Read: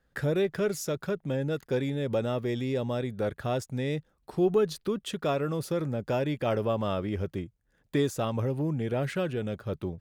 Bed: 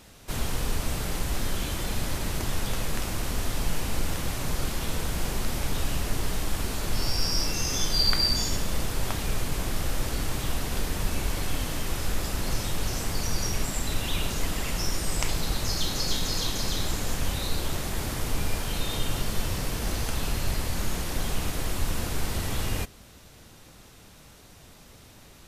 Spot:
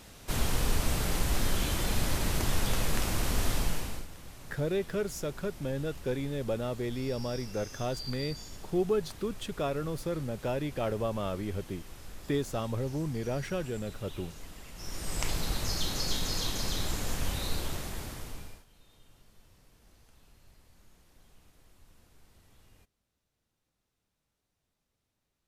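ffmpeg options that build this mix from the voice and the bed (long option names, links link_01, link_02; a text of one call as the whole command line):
ffmpeg -i stem1.wav -i stem2.wav -filter_complex "[0:a]adelay=4350,volume=-4dB[link_01];[1:a]volume=14dB,afade=type=out:start_time=3.51:duration=0.56:silence=0.125893,afade=type=in:start_time=14.75:duration=0.53:silence=0.199526,afade=type=out:start_time=17.52:duration=1.13:silence=0.0398107[link_02];[link_01][link_02]amix=inputs=2:normalize=0" out.wav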